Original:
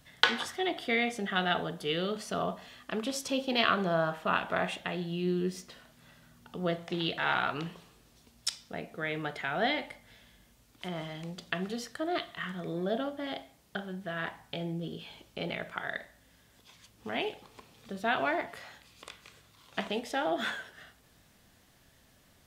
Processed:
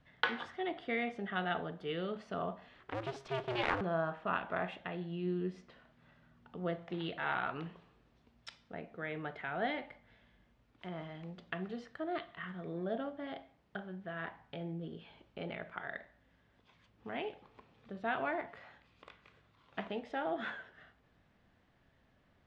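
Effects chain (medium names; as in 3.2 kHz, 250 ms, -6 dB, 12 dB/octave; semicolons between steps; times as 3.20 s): 2.74–3.81 s: cycle switcher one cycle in 2, inverted; low-pass 2.3 kHz 12 dB/octave; trim -5.5 dB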